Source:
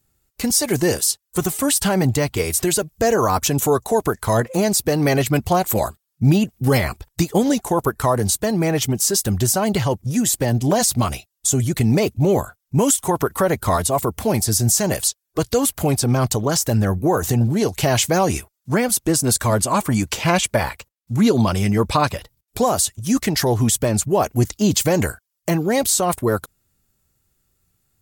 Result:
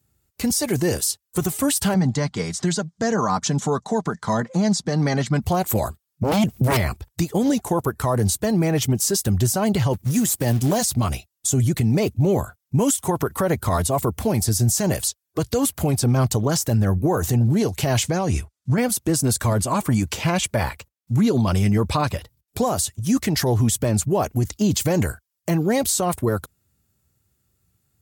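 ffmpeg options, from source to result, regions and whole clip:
-filter_complex "[0:a]asettb=1/sr,asplit=3[a][b][c];[a]atrim=end=1.944[d];[b]atrim=start=1.94:end=5.42,asetpts=PTS-STARTPTS,afade=t=in:d=0.004:c=qsin,afade=t=out:st=3.476:d=0.004:c=qsin,highpass=160,equalizer=f=170:t=q:w=4:g=5,equalizer=f=390:t=q:w=4:g=-10,equalizer=f=590:t=q:w=4:g=-5,equalizer=f=2.6k:t=q:w=4:g=-10,lowpass=f=6.9k:w=0.5412,lowpass=f=6.9k:w=1.3066,aecho=1:1:5:0.31,atrim=end_sample=153468[e];[c]atrim=start=5.416[f];[d][e]acrossfade=d=0.004:c1=hsin:c2=qsin[g];[g][f]acrossfade=d=0.004:c1=qsin:c2=hsin,asettb=1/sr,asplit=3[h][i][j];[h]atrim=end=6.234[k];[i]atrim=start=6.23:end=6.77,asetpts=PTS-STARTPTS,afade=t=in:d=0.004:c=qsin,afade=t=out:st=0.536:d=0.004:c=qsin,aeval=exprs='0.531*sin(PI/2*3.55*val(0)/0.531)':c=same,acompressor=threshold=-16dB:ratio=4:attack=3.2:release=140:knee=1:detection=peak[l];[j]atrim=start=6.766[m];[k][l]acrossfade=d=0.004:c1=hsin:c2=qsin[n];[n][m]acrossfade=d=0.004:c1=qsin:c2=hsin,asettb=1/sr,asplit=3[o][p][q];[o]atrim=end=9.934[r];[p]atrim=start=9.93:end=10.83,asetpts=PTS-STARTPTS,afade=t=in:d=0.004:c=qsin,afade=t=out:st=0.896:d=0.004:c=qsin,highpass=f=53:p=1,highshelf=f=7k:g=10,acrusher=bits=4:mode=log:mix=0:aa=0.000001[s];[q]atrim=start=10.826[t];[r][s]acrossfade=d=0.004:c1=hsin:c2=qsin[u];[u][t]acrossfade=d=0.004:c1=qsin:c2=hsin,asettb=1/sr,asplit=3[v][w][x];[v]atrim=end=18.034[y];[w]atrim=start=18.03:end=18.78,asetpts=PTS-STARTPTS,afade=t=in:d=0.004:c=qsin,afade=t=out:st=0.746:d=0.004:c=qsin,lowpass=8.8k,asubboost=boost=8.5:cutoff=220,acompressor=threshold=-18dB:ratio=3:attack=3.2:release=140:knee=1:detection=peak[z];[x]atrim=start=18.776[aa];[y][z]acrossfade=d=0.004:c1=hsin:c2=qsin[ab];[ab][aa]acrossfade=d=0.004:c1=qsin:c2=hsin,highpass=f=57:w=0.5412,highpass=f=57:w=1.3066,lowshelf=f=230:g=6.5,alimiter=limit=-9dB:level=0:latency=1:release=57,volume=-2.5dB"

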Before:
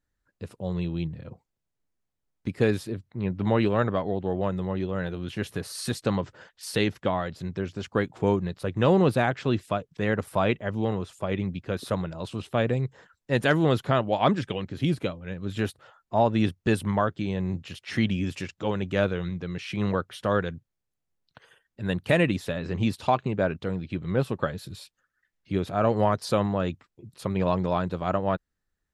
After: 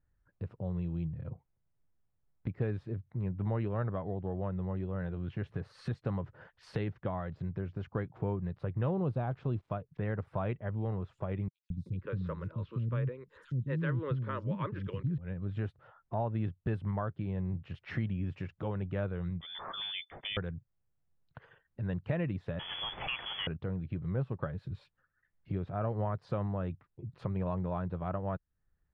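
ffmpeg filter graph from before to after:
-filter_complex "[0:a]asettb=1/sr,asplit=3[a][b][c];[a]atrim=end=8.914[d];[b]atrim=start=8.91:end=9.72,asetpts=PTS-STARTPTS,afade=t=in:d=0.004:c=qsin,afade=t=out:st=0.806:d=0.004:c=qsin,equalizer=f=1.9k:t=o:w=0.65:g=-12,acrusher=bits=7:mix=0:aa=0.5[e];[c]atrim=start=9.716[f];[d][e]acrossfade=d=0.004:c1=hsin:c2=qsin[g];[g][f]acrossfade=d=0.004:c1=qsin:c2=hsin,asettb=1/sr,asplit=3[h][i][j];[h]atrim=end=11.484[k];[i]atrim=start=11.48:end=15.18,asetpts=PTS-STARTPTS,afade=t=in:d=0.004:c=qsin,afade=t=out:st=3.696:d=0.004:c=qsin,asuperstop=centerf=730:order=4:qfactor=1.9,acrossover=split=290|5600[l][m][n];[l]adelay=220[o];[m]adelay=380[p];[o][p][n]amix=inputs=3:normalize=0,atrim=end_sample=163170[q];[j]atrim=start=15.176[r];[k][q]acrossfade=d=0.004:c1=hsin:c2=qsin[s];[s][r]acrossfade=d=0.004:c1=qsin:c2=hsin,asettb=1/sr,asplit=3[t][u][v];[t]atrim=end=19.414[w];[u]atrim=start=19.41:end=20.37,asetpts=PTS-STARTPTS,afade=t=in:d=0.004:c=qsin,afade=t=out:st=0.956:d=0.004:c=qsin,equalizer=f=74:t=o:w=1.7:g=9,lowpass=f=3.1k:t=q:w=0.5098,lowpass=f=3.1k:t=q:w=0.6013,lowpass=f=3.1k:t=q:w=0.9,lowpass=f=3.1k:t=q:w=2.563,afreqshift=-3600[x];[v]atrim=start=20.366[y];[w][x]acrossfade=d=0.004:c1=hsin:c2=qsin[z];[z][y]acrossfade=d=0.004:c1=qsin:c2=hsin,asettb=1/sr,asplit=3[aa][ab][ac];[aa]atrim=end=22.594[ad];[ab]atrim=start=22.59:end=23.47,asetpts=PTS-STARTPTS,afade=t=in:d=0.004:c=qsin,afade=t=out:st=0.876:d=0.004:c=qsin,aeval=exprs='val(0)+0.5*0.0668*sgn(val(0))':c=same,lowpass=f=3k:t=q:w=0.5098,lowpass=f=3k:t=q:w=0.6013,lowpass=f=3k:t=q:w=0.9,lowpass=f=3k:t=q:w=2.563,afreqshift=-3500[ae];[ac]atrim=start=23.466[af];[ad][ae]acrossfade=d=0.004:c1=hsin:c2=qsin[ag];[ag][af]acrossfade=d=0.004:c1=qsin:c2=hsin,lowpass=1.7k,lowshelf=f=180:t=q:w=1.5:g=6,acompressor=threshold=-40dB:ratio=2"

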